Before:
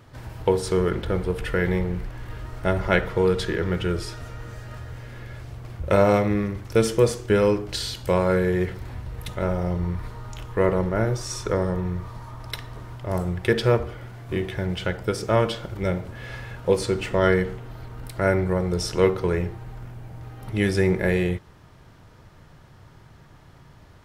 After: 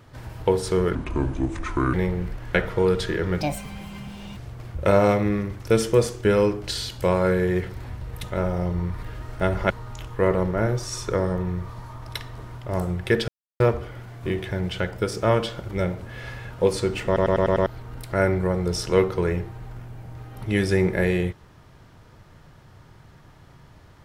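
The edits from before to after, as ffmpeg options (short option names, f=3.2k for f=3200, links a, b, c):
-filter_complex "[0:a]asplit=15[a][b][c][d][e][f][g][h][i][j][k][l][m][n][o];[a]atrim=end=0.954[p];[b]atrim=start=0.95:end=1.66,asetpts=PTS-STARTPTS,asetrate=31752,aresample=44100[q];[c]atrim=start=1.656:end=2.272[r];[d]atrim=start=2.938:end=3.804[s];[e]atrim=start=3.8:end=5.42,asetpts=PTS-STARTPTS,asetrate=74088,aresample=44100[t];[f]atrim=start=5.416:end=10.082[u];[g]atrim=start=2.268:end=2.942[v];[h]atrim=start=10.078:end=13.66,asetpts=PTS-STARTPTS,afade=t=out:st=3.578:d=0.004:c=hsin,apad=pad_dur=0.32[w];[i]atrim=start=13.66:end=17.222,asetpts=PTS-STARTPTS,afade=t=in:d=0.004:c=hsin[x];[j]atrim=start=17.118:end=17.222[y];[k]atrim=start=17.118:end=17.222[z];[l]atrim=start=17.118:end=17.222[aa];[m]atrim=start=17.118:end=17.222[ab];[n]atrim=start=17.118:end=17.222[ac];[o]atrim=start=17.718[ad];[p][q]acrossfade=d=0.004:c1=hsin:c2=hsin[ae];[ae][r]acrossfade=d=0.004:c1=hsin:c2=hsin[af];[af][s]acrossfade=d=0.004:c1=hsin:c2=hsin[ag];[ag][t]acrossfade=d=0.004:c1=hsin:c2=hsin[ah];[ah][u]acrossfade=d=0.004:c1=hsin:c2=hsin[ai];[ai][v]acrossfade=d=0.004:c1=hsin:c2=hsin[aj];[w][x]concat=n=2:v=0:a=1[ak];[aj][ak]acrossfade=d=0.004:c1=hsin:c2=hsin[al];[al][y]acrossfade=d=0.004:c1=hsin:c2=hsin[am];[am][z]acrossfade=d=0.004:c1=hsin:c2=hsin[an];[an][aa]acrossfade=d=0.004:c1=hsin:c2=hsin[ao];[ao][ab]acrossfade=d=0.004:c1=hsin:c2=hsin[ap];[ap][ac]acrossfade=d=0.004:c1=hsin:c2=hsin[aq];[aq][ad]acrossfade=d=0.004:c1=hsin:c2=hsin"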